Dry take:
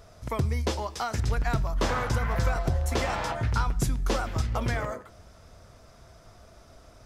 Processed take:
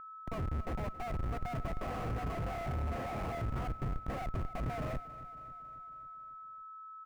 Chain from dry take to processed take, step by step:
formant filter a
bass and treble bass +13 dB, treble +5 dB
comparator with hysteresis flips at −42.5 dBFS
steady tone 1,300 Hz −47 dBFS
drawn EQ curve 120 Hz 0 dB, 1,100 Hz −8 dB, 2,000 Hz −6 dB, 3,700 Hz −16 dB, 11,000 Hz −19 dB
on a send: repeating echo 274 ms, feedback 60%, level −17 dB
on the sum: level +8.5 dB

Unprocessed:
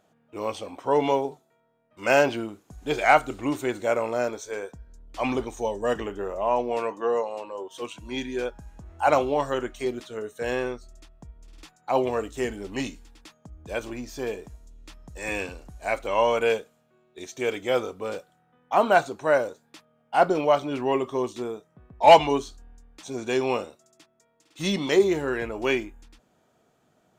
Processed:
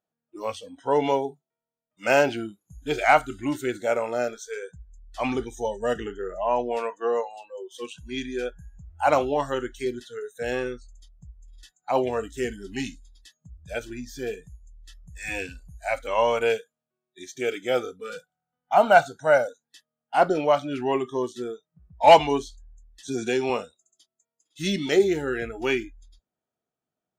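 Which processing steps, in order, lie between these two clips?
noise reduction from a noise print of the clip's start 23 dB
0:18.10–0:19.48: comb filter 1.4 ms, depth 60%
0:23.08–0:23.50: multiband upward and downward compressor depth 70%

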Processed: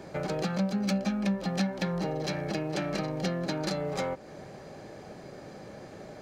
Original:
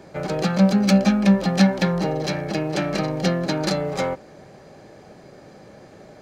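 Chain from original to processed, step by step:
downward compressor 2.5 to 1, threshold −32 dBFS, peak gain reduction 14 dB

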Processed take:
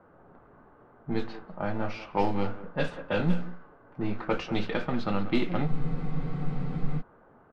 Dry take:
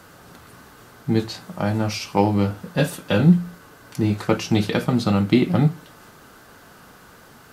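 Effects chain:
in parallel at −5.5 dB: gain into a clipping stage and back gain 23.5 dB
on the sum: low-shelf EQ 280 Hz −11 dB
low-pass that shuts in the quiet parts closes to 2,500 Hz, open at −16 dBFS
far-end echo of a speakerphone 190 ms, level −12 dB
low-pass that shuts in the quiet parts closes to 750 Hz, open at −12 dBFS
on a send at −14 dB: one-pitch LPC vocoder at 8 kHz 240 Hz + convolution reverb RT60 0.40 s, pre-delay 6 ms
on the sum: frozen spectrum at 0:05.70, 1.31 s
level −6.5 dB

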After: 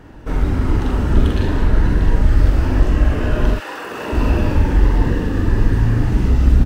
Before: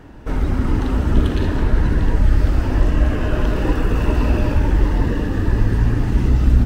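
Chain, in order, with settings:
0:03.54–0:04.12: high-pass filter 1,200 Hz → 310 Hz 12 dB per octave
double-tracking delay 44 ms −4 dB

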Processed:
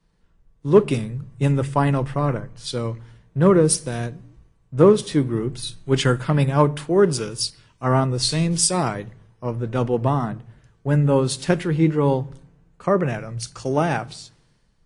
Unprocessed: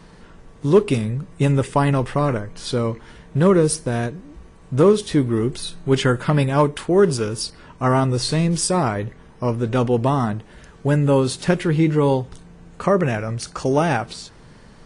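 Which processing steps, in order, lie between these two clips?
on a send at −19 dB: parametric band 120 Hz +10 dB 0.77 octaves + convolution reverb RT60 0.80 s, pre-delay 6 ms
on the sum: multiband upward and downward expander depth 70%
level −2.5 dB

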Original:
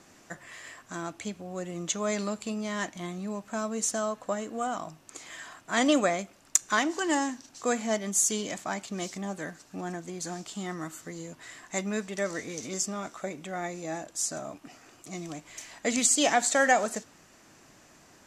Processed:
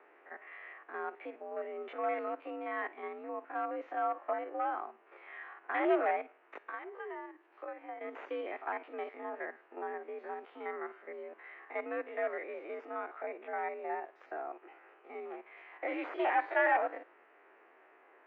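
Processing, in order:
spectrum averaged block by block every 50 ms
0:06.59–0:08.01: downward compressor 4 to 1, threshold −41 dBFS, peak gain reduction 16 dB
asymmetric clip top −25.5 dBFS
single-sideband voice off tune +69 Hz 300–2,300 Hz
level −1 dB

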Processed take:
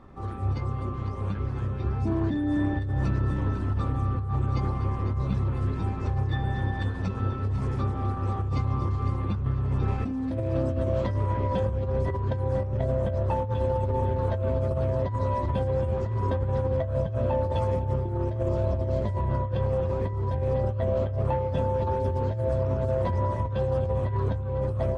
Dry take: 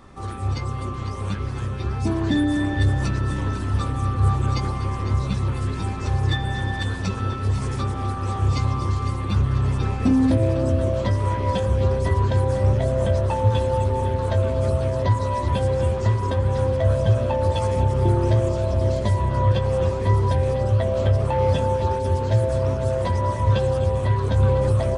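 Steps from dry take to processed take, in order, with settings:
low-pass filter 1,100 Hz 6 dB per octave, from 0:09.88 2,300 Hz, from 0:11.14 1,300 Hz
compressor whose output falls as the input rises −22 dBFS, ratio −1
every ending faded ahead of time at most 110 dB per second
level −3.5 dB

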